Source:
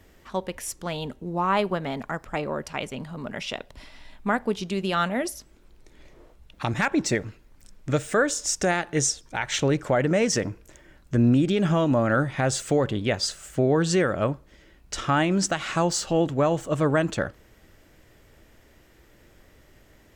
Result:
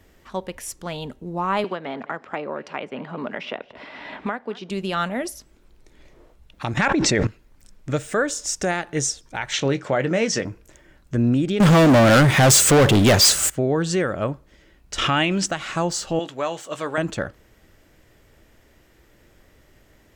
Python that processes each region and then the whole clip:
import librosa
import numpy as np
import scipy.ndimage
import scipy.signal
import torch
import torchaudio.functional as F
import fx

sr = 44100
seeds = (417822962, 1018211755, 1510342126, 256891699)

y = fx.chain(x, sr, fx.bandpass_edges(low_hz=250.0, high_hz=3000.0),
    fx.echo_single(ms=213, db=-22.0),
    fx.band_squash(depth_pct=100), at=(1.64, 4.7))
y = fx.chain(y, sr, fx.lowpass(hz=6300.0, slope=12),
    fx.env_flatten(amount_pct=100), at=(6.77, 7.27))
y = fx.chain(y, sr, fx.bandpass_edges(low_hz=110.0, high_hz=5000.0),
    fx.high_shelf(hz=2900.0, db=7.5),
    fx.doubler(ms=22.0, db=-12.5), at=(9.53, 10.45))
y = fx.chain(y, sr, fx.highpass(hz=44.0, slope=24),
    fx.high_shelf(hz=7200.0, db=10.5),
    fx.leveller(passes=5), at=(11.6, 13.5))
y = fx.chain(y, sr, fx.peak_eq(hz=2800.0, db=10.5, octaves=0.89),
    fx.pre_swell(db_per_s=40.0), at=(14.98, 15.46))
y = fx.chain(y, sr, fx.highpass(hz=800.0, slope=6),
    fx.dynamic_eq(hz=3800.0, q=0.8, threshold_db=-48.0, ratio=4.0, max_db=6),
    fx.doubler(ms=17.0, db=-12), at=(16.19, 16.98))